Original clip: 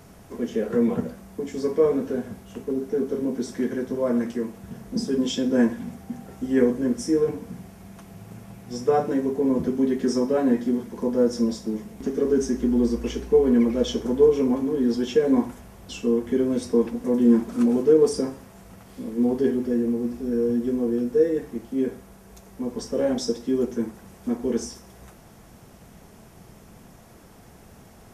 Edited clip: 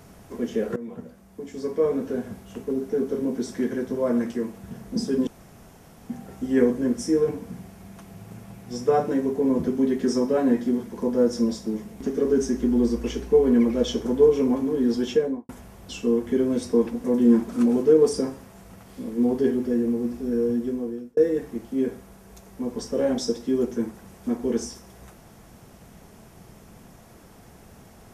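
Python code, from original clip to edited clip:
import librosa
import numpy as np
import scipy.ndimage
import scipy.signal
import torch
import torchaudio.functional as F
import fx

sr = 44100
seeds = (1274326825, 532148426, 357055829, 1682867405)

y = fx.studio_fade_out(x, sr, start_s=15.09, length_s=0.4)
y = fx.edit(y, sr, fx.fade_in_from(start_s=0.76, length_s=1.56, floor_db=-18.0),
    fx.room_tone_fill(start_s=5.27, length_s=0.82),
    fx.fade_out_span(start_s=20.26, length_s=0.91, curve='qsin'), tone=tone)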